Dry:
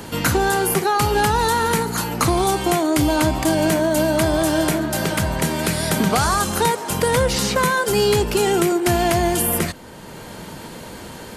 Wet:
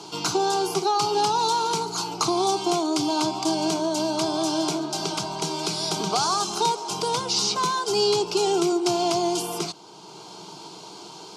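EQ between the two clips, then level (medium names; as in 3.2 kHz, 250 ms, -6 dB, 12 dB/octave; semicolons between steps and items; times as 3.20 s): high-pass 250 Hz 12 dB/octave; resonant low-pass 5.4 kHz, resonance Q 2.3; static phaser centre 360 Hz, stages 8; -2.5 dB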